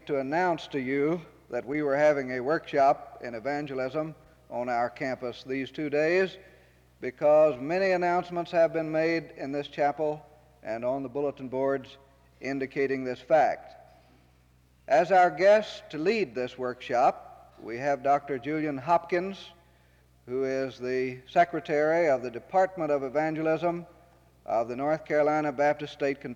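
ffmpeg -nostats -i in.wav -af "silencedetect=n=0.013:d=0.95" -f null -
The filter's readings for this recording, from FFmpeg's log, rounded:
silence_start: 13.58
silence_end: 14.88 | silence_duration: 1.30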